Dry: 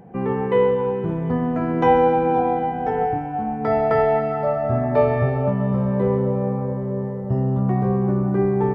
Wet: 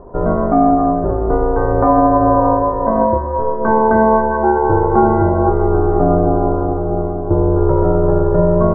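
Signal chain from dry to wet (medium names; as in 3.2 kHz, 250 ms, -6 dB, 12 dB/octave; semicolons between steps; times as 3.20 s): elliptic low-pass 1.3 kHz, stop band 60 dB; ring modulator 220 Hz; loudness maximiser +12 dB; trim -1 dB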